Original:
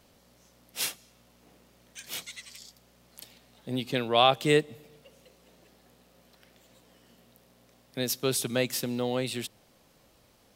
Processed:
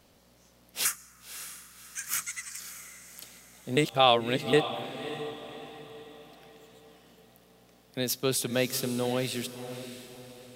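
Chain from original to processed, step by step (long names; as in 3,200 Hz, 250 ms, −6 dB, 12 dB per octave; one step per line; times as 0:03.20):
0:00.85–0:02.60: drawn EQ curve 130 Hz 0 dB, 540 Hz −11 dB, 840 Hz −8 dB, 1,300 Hz +13 dB, 2,000 Hz +7 dB, 3,700 Hz −9 dB, 6,600 Hz +11 dB, 9,400 Hz +10 dB, 15,000 Hz +7 dB
0:03.77–0:04.53: reverse
feedback delay with all-pass diffusion 572 ms, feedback 42%, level −11 dB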